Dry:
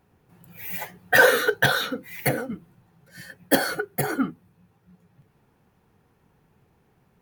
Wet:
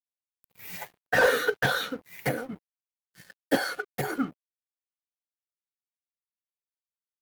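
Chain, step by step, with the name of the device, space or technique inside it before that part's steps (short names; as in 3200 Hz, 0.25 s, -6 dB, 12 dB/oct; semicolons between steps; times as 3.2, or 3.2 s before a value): 3.57–3.97 weighting filter A; early transistor amplifier (crossover distortion -43 dBFS; slew limiter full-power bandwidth 230 Hz); low shelf 78 Hz -6.5 dB; gain -3 dB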